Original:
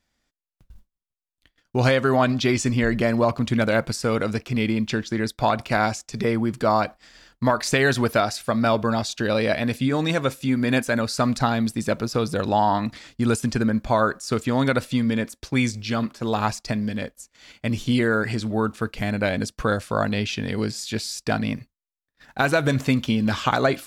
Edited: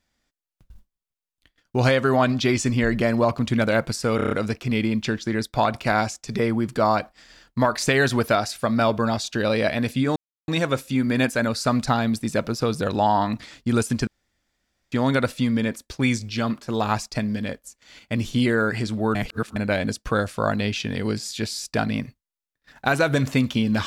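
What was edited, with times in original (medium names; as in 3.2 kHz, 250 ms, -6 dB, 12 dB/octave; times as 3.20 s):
4.16 s: stutter 0.03 s, 6 plays
10.01 s: insert silence 0.32 s
13.60–14.45 s: room tone
18.68–19.09 s: reverse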